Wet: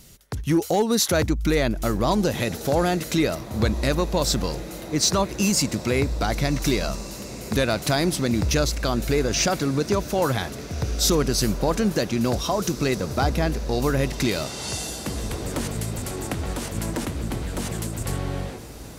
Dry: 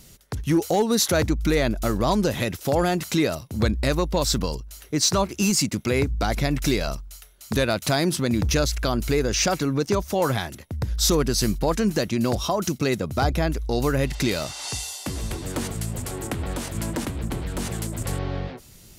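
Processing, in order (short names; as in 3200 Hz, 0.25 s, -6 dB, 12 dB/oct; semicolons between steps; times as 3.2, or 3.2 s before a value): diffused feedback echo 1.633 s, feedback 65%, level -15 dB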